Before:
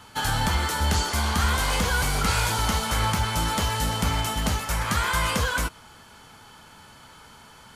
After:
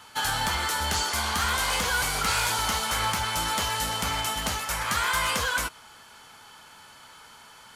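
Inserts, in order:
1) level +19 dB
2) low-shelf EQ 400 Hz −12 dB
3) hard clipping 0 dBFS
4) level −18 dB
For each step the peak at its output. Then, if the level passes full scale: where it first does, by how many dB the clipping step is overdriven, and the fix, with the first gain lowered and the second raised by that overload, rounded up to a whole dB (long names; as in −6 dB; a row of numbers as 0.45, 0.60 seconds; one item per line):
+6.0, +7.0, 0.0, −18.0 dBFS
step 1, 7.0 dB
step 1 +12 dB, step 4 −11 dB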